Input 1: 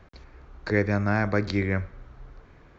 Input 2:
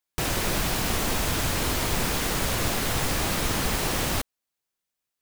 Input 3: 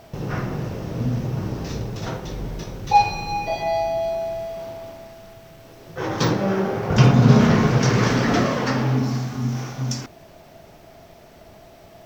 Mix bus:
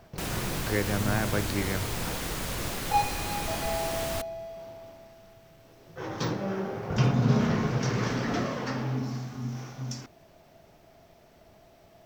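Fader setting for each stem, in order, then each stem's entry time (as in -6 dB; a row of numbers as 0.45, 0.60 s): -5.0, -7.5, -10.0 dB; 0.00, 0.00, 0.00 s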